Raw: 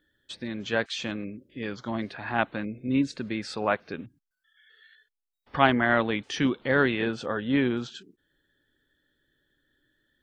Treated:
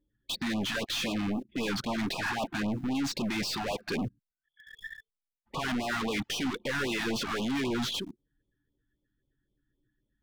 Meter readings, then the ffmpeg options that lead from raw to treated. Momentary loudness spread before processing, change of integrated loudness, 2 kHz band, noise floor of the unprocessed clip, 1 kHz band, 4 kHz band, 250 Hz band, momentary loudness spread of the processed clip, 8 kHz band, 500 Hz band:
15 LU, -4.5 dB, -5.0 dB, -85 dBFS, -6.5 dB, +3.0 dB, -3.5 dB, 8 LU, +6.5 dB, -7.0 dB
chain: -filter_complex "[0:a]anlmdn=0.0251,bass=f=250:g=7,treble=f=4000:g=6,areverse,acompressor=threshold=0.0355:ratio=5,areverse,asplit=2[s0][s1];[s1]highpass=f=720:p=1,volume=79.4,asoftclip=type=tanh:threshold=0.126[s2];[s0][s2]amix=inputs=2:normalize=0,lowpass=f=3700:p=1,volume=0.501,asplit=2[s3][s4];[s4]acrusher=bits=4:dc=4:mix=0:aa=0.000001,volume=0.282[s5];[s3][s5]amix=inputs=2:normalize=0,afftfilt=real='re*(1-between(b*sr/1024,440*pow(1800/440,0.5+0.5*sin(2*PI*3.8*pts/sr))/1.41,440*pow(1800/440,0.5+0.5*sin(2*PI*3.8*pts/sr))*1.41))':imag='im*(1-between(b*sr/1024,440*pow(1800/440,0.5+0.5*sin(2*PI*3.8*pts/sr))/1.41,440*pow(1800/440,0.5+0.5*sin(2*PI*3.8*pts/sr))*1.41))':win_size=1024:overlap=0.75,volume=0.473"

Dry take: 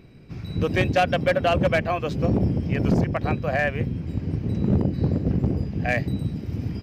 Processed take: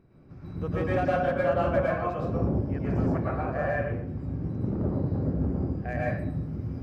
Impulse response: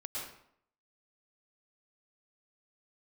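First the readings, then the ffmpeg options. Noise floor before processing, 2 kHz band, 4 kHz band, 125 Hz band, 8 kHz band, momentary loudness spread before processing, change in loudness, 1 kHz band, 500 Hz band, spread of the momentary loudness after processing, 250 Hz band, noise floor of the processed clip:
-37 dBFS, -7.5 dB, under -15 dB, -5.5 dB, no reading, 8 LU, -5.0 dB, -4.0 dB, -3.0 dB, 8 LU, -5.5 dB, -46 dBFS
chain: -filter_complex "[0:a]highshelf=f=1900:t=q:w=1.5:g=-9.5[s0];[1:a]atrim=start_sample=2205[s1];[s0][s1]afir=irnorm=-1:irlink=0,volume=0.531"

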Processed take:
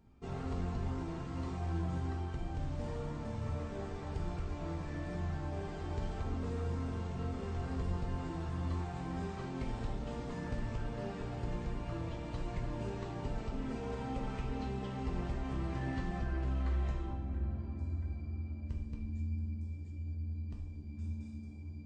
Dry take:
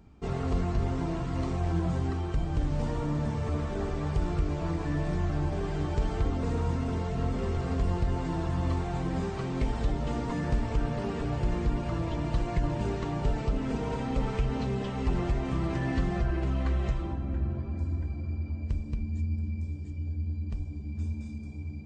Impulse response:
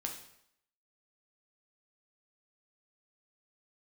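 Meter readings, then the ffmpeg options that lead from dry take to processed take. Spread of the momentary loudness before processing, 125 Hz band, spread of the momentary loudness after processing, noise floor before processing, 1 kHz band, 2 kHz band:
5 LU, -8.0 dB, 4 LU, -38 dBFS, -7.5 dB, -7.5 dB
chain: -filter_complex "[1:a]atrim=start_sample=2205[s0];[0:a][s0]afir=irnorm=-1:irlink=0,volume=0.398"

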